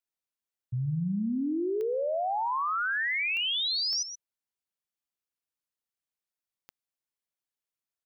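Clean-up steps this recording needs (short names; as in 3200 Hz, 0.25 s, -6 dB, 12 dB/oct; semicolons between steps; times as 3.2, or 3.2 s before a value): de-click; inverse comb 0.125 s -10.5 dB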